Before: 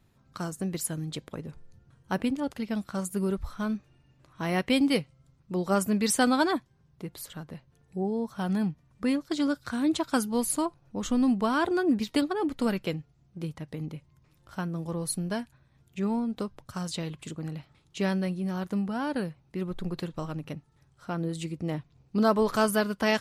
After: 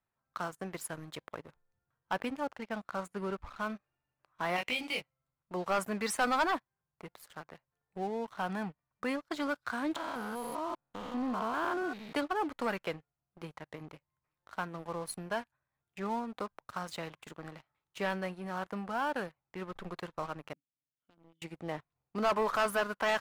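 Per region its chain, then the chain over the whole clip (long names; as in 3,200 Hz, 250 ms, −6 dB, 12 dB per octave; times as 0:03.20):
0:02.47–0:03.57: high-frequency loss of the air 56 metres + one half of a high-frequency compander decoder only
0:04.56–0:05.01: high shelf with overshoot 2,000 Hz +7 dB, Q 3 + downward compressor 4 to 1, threshold −29 dBFS + double-tracking delay 20 ms −2.5 dB
0:09.96–0:12.15: spectrum averaged block by block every 200 ms + flat-topped bell 7,000 Hz −11.5 dB 1.1 octaves
0:20.53–0:21.42: formant resonators in series i + spectral tilt +1.5 dB per octave + notch filter 2,400 Hz, Q 6.8
whole clip: three-way crossover with the lows and the highs turned down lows −16 dB, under 600 Hz, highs −14 dB, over 2,200 Hz; leveller curve on the samples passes 3; level −7 dB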